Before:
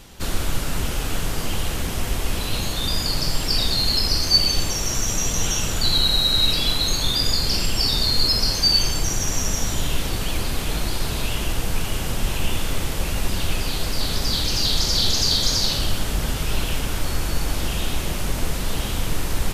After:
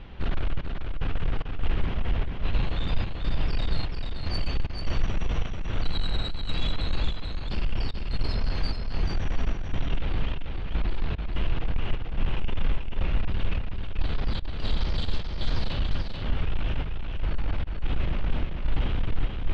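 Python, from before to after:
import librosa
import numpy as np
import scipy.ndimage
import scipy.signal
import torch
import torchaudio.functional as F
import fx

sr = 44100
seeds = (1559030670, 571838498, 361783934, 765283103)

p1 = scipy.signal.sosfilt(scipy.signal.cheby2(4, 70, 11000.0, 'lowpass', fs=sr, output='sos'), x)
p2 = fx.low_shelf(p1, sr, hz=100.0, db=8.5)
p3 = fx.rider(p2, sr, range_db=10, speed_s=0.5)
p4 = 10.0 ** (-13.5 / 20.0) * np.tanh(p3 / 10.0 ** (-13.5 / 20.0))
p5 = fx.step_gate(p4, sr, bpm=74, pattern='xxx..xx.xxx.xxx.', floor_db=-24.0, edge_ms=4.5)
p6 = p5 + fx.echo_single(p5, sr, ms=438, db=-5.0, dry=0)
y = p6 * librosa.db_to_amplitude(-4.5)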